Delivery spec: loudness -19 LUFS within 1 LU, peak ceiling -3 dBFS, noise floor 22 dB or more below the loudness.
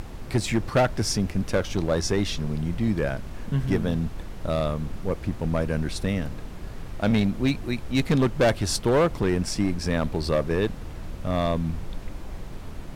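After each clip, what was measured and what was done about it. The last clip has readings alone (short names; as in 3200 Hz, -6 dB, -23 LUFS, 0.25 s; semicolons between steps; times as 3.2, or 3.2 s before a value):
clipped 1.8%; flat tops at -15.5 dBFS; noise floor -38 dBFS; noise floor target -48 dBFS; loudness -26.0 LUFS; peak -15.5 dBFS; loudness target -19.0 LUFS
-> clip repair -15.5 dBFS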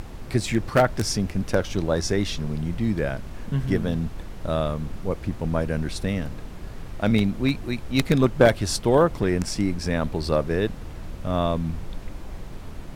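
clipped 0.0%; noise floor -38 dBFS; noise floor target -47 dBFS
-> noise print and reduce 9 dB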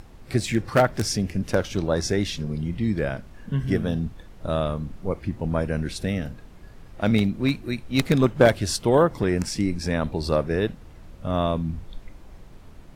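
noise floor -46 dBFS; noise floor target -47 dBFS
-> noise print and reduce 6 dB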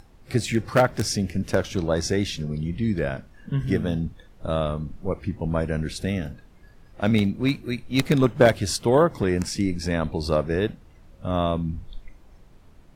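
noise floor -52 dBFS; loudness -24.5 LUFS; peak -6.0 dBFS; loudness target -19.0 LUFS
-> gain +5.5 dB; limiter -3 dBFS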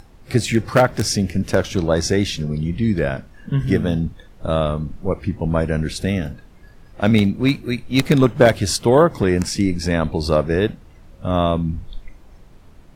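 loudness -19.5 LUFS; peak -3.0 dBFS; noise floor -46 dBFS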